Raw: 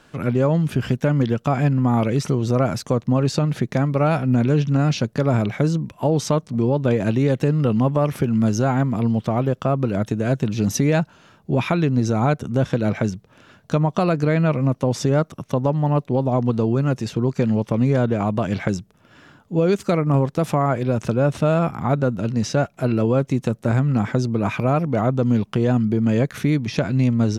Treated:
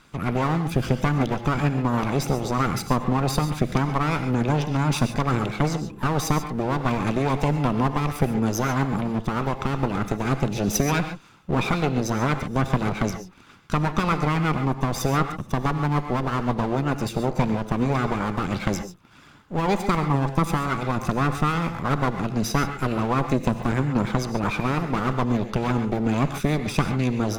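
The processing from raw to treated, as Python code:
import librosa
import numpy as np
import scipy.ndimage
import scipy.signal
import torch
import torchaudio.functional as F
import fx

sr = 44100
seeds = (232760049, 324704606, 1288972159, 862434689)

y = fx.lower_of_two(x, sr, delay_ms=0.81)
y = fx.hpss(y, sr, part='harmonic', gain_db=-7)
y = fx.rev_gated(y, sr, seeds[0], gate_ms=160, shape='rising', drr_db=8.0)
y = y * librosa.db_to_amplitude(2.0)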